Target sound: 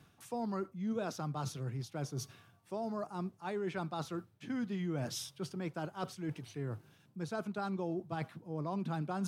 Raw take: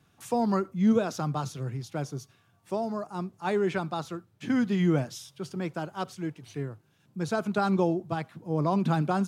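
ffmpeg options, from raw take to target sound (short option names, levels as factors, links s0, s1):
-af "equalizer=f=7000:w=7.4:g=-4,areverse,acompressor=threshold=0.00708:ratio=4,areverse,volume=1.78"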